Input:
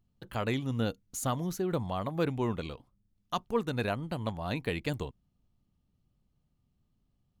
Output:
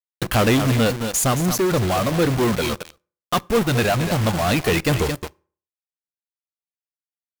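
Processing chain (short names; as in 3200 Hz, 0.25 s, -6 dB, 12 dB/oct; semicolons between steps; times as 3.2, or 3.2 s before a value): reverb removal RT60 1.4 s; companded quantiser 4-bit; notch 940 Hz, Q 6.5; echo 0.22 s -15 dB; in parallel at -12 dB: fuzz box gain 51 dB, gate -50 dBFS; on the sum: vocal rider 2 s; on a send at -22.5 dB: reverb RT60 0.45 s, pre-delay 3 ms; on the sum: gain +5 dB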